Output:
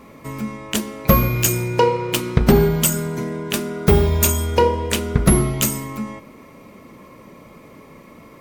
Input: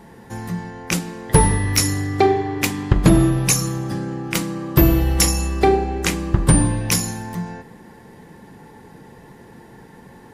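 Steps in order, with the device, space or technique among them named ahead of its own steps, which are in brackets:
nightcore (speed change +23%)

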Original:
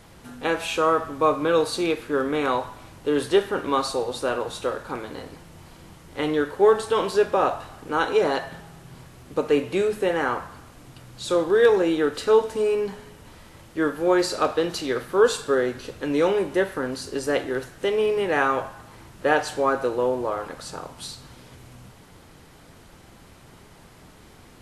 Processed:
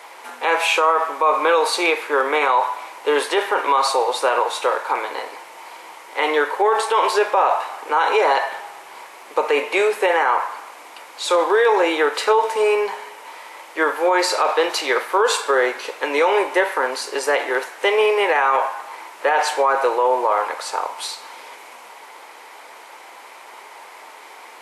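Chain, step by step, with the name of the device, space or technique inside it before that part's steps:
laptop speaker (high-pass filter 430 Hz 24 dB per octave; parametric band 930 Hz +11 dB 0.59 octaves; parametric band 2,200 Hz +9 dB 0.51 octaves; brickwall limiter −15 dBFS, peak gain reduction 12 dB)
level +7 dB

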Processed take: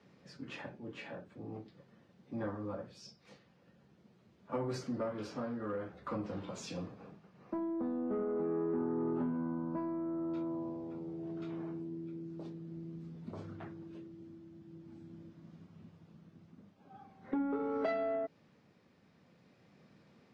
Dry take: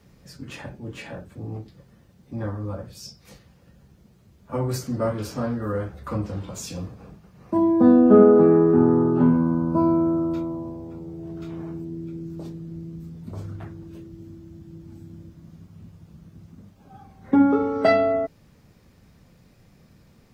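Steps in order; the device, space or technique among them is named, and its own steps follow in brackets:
AM radio (band-pass filter 190–4,100 Hz; downward compressor 6 to 1, threshold −26 dBFS, peak gain reduction 16 dB; soft clipping −20.5 dBFS, distortion −22 dB; amplitude tremolo 0.45 Hz, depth 31%)
level −4.5 dB

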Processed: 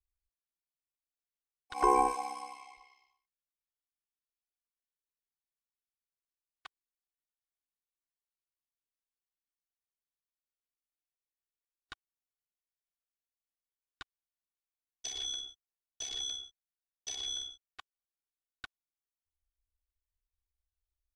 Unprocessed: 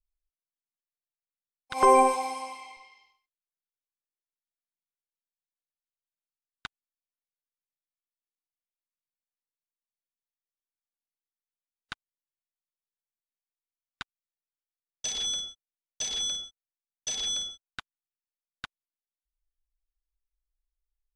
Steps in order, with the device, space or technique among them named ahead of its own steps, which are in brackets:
ring-modulated robot voice (ring modulation 33 Hz; comb filter 2.7 ms, depth 81%)
level −7 dB

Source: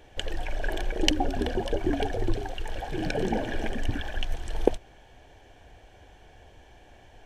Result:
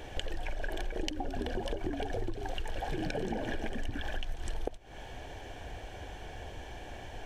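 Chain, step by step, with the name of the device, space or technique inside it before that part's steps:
serial compression, leveller first (downward compressor 2.5 to 1, threshold −29 dBFS, peak gain reduction 10.5 dB; downward compressor 10 to 1, threshold −39 dBFS, peak gain reduction 17.5 dB)
level +8.5 dB

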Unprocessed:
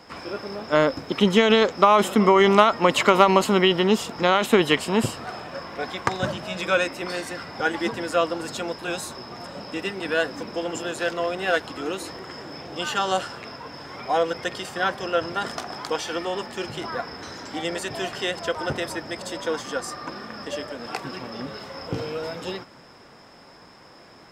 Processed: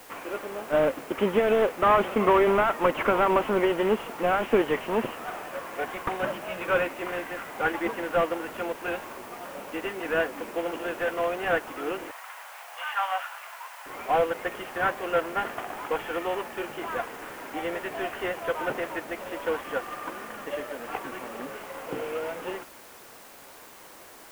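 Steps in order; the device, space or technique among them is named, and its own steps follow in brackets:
army field radio (band-pass filter 320–3,200 Hz; variable-slope delta modulation 16 kbit/s; white noise bed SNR 23 dB)
0:12.11–0:13.86: inverse Chebyshev high-pass filter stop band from 370 Hz, stop band 40 dB

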